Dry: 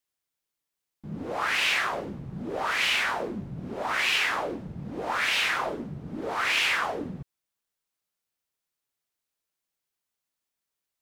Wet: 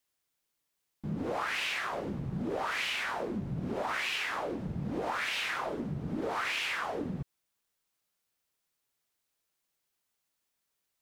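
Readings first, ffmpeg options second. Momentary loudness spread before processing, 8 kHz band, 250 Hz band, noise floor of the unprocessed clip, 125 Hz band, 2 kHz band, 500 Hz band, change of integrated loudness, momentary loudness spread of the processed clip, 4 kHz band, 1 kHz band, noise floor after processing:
14 LU, -8.0 dB, 0.0 dB, under -85 dBFS, +1.5 dB, -8.0 dB, -2.5 dB, -7.0 dB, 6 LU, -8.5 dB, -5.5 dB, -82 dBFS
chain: -af "acompressor=threshold=0.02:ratio=10,volume=1.5"

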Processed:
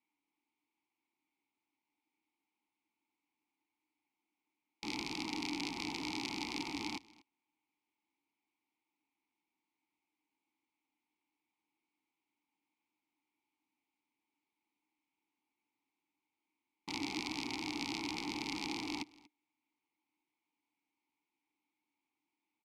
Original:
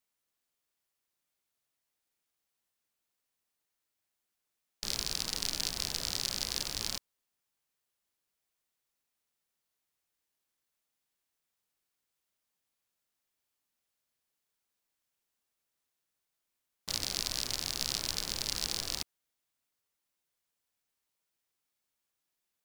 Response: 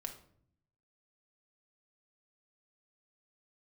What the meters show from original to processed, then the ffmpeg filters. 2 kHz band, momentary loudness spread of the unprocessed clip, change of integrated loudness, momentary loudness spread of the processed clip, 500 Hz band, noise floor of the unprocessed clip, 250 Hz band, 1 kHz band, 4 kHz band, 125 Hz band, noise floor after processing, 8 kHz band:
+2.0 dB, 5 LU, -6.5 dB, 5 LU, -0.5 dB, -85 dBFS, +10.0 dB, +4.0 dB, -9.0 dB, -6.0 dB, under -85 dBFS, -14.5 dB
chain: -filter_complex "[0:a]asplit=3[s0][s1][s2];[s0]bandpass=f=300:t=q:w=8,volume=1[s3];[s1]bandpass=f=870:t=q:w=8,volume=0.501[s4];[s2]bandpass=f=2240:t=q:w=8,volume=0.355[s5];[s3][s4][s5]amix=inputs=3:normalize=0,aecho=1:1:238:0.075,volume=6.68"

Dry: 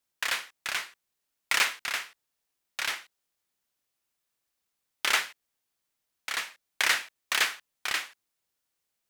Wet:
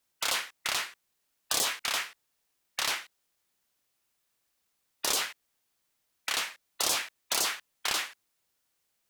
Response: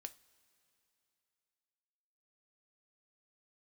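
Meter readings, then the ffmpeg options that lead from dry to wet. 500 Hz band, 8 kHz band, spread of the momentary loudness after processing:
+3.5 dB, +4.0 dB, 10 LU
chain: -af "afftfilt=real='re*lt(hypot(re,im),0.0708)':imag='im*lt(hypot(re,im),0.0708)':win_size=1024:overlap=0.75,volume=1.68"

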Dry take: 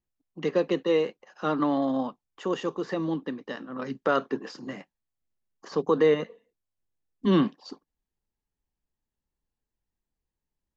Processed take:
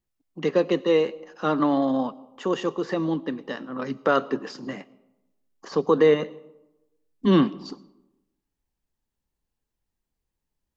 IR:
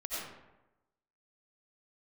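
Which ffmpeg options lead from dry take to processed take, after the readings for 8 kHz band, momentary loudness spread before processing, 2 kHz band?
no reading, 15 LU, +3.0 dB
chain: -filter_complex "[0:a]asplit=2[s0][s1];[s1]equalizer=f=1700:w=4.1:g=-14[s2];[1:a]atrim=start_sample=2205[s3];[s2][s3]afir=irnorm=-1:irlink=0,volume=0.0891[s4];[s0][s4]amix=inputs=2:normalize=0,volume=1.41"

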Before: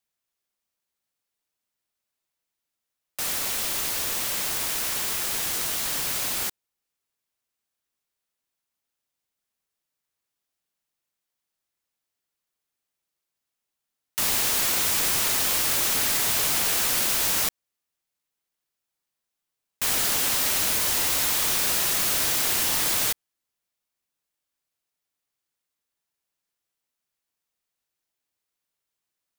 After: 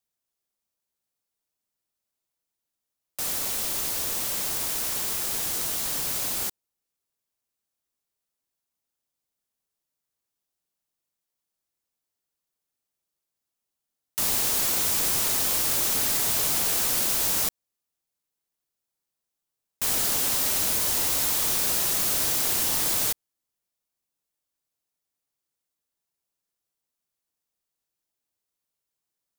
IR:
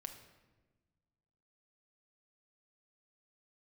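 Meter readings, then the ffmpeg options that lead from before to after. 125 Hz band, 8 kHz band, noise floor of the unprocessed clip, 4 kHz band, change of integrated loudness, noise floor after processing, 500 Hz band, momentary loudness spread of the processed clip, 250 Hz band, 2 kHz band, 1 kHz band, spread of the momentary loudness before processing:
0.0 dB, -1.0 dB, -85 dBFS, -3.0 dB, -1.0 dB, -85 dBFS, -1.0 dB, 5 LU, 0.0 dB, -5.0 dB, -3.0 dB, 5 LU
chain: -af "equalizer=f=2100:t=o:w=2.1:g=-5.5"

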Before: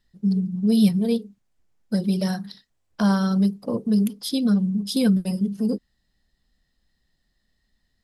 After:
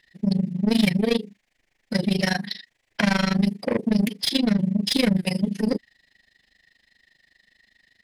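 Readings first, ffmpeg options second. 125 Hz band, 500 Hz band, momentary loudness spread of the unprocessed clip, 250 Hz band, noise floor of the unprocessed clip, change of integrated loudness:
-1.0 dB, +2.0 dB, 8 LU, -1.5 dB, -72 dBFS, -0.5 dB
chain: -filter_complex "[0:a]asplit=2[s0][s1];[s1]highpass=f=720:p=1,volume=14.1,asoftclip=type=tanh:threshold=0.376[s2];[s0][s2]amix=inputs=2:normalize=0,lowpass=f=1600:p=1,volume=0.501,highshelf=f=1600:t=q:w=3:g=6.5,tremolo=f=25:d=0.919"

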